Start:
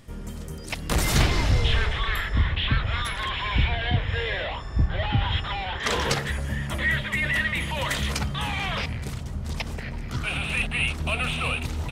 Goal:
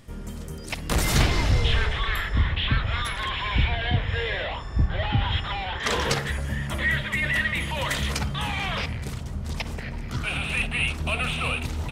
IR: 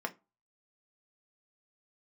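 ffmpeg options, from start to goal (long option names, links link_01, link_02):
-filter_complex "[0:a]asplit=2[link_01][link_02];[1:a]atrim=start_sample=2205,adelay=52[link_03];[link_02][link_03]afir=irnorm=-1:irlink=0,volume=-19dB[link_04];[link_01][link_04]amix=inputs=2:normalize=0"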